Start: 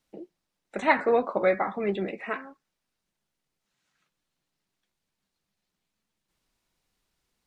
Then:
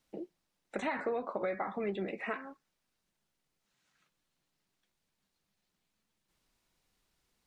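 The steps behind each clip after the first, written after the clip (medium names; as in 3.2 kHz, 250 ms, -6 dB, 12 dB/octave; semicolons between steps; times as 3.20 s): peak limiter -16 dBFS, peak gain reduction 9 dB; compression 3:1, threshold -34 dBFS, peak gain reduction 10 dB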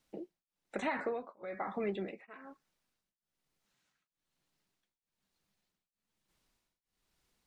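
tremolo of two beating tones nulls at 1.1 Hz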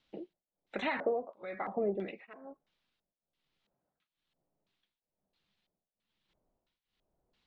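LFO low-pass square 1.5 Hz 640–3500 Hz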